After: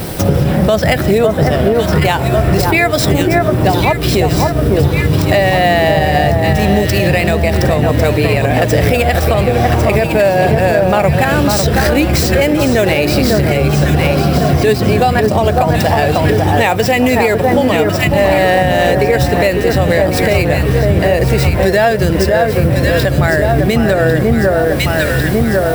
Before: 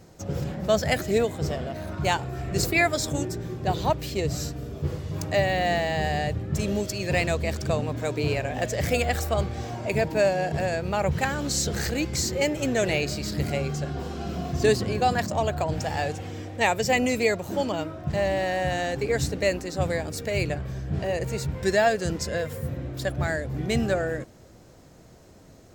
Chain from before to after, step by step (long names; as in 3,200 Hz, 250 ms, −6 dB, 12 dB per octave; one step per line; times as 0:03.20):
running median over 5 samples
high-shelf EQ 9,000 Hz +8 dB
notch filter 4,400 Hz, Q 13
in parallel at −5.5 dB: bit-depth reduction 8 bits, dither triangular
on the sum: parametric band 6,700 Hz −10.5 dB 0.24 octaves
on a send: delay that swaps between a low-pass and a high-pass 550 ms, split 1,600 Hz, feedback 64%, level −5 dB
on the sum: downward compressor 6 to 1, threshold −33 dBFS, peak gain reduction 19 dB
boost into a limiter +25.5 dB
level −1 dB